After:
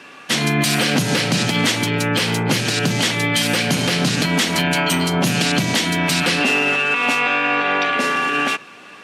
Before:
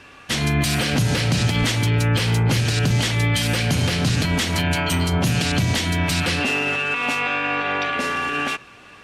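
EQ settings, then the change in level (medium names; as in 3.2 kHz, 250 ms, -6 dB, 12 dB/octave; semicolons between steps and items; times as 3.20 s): high-pass 160 Hz 24 dB/octave; +4.5 dB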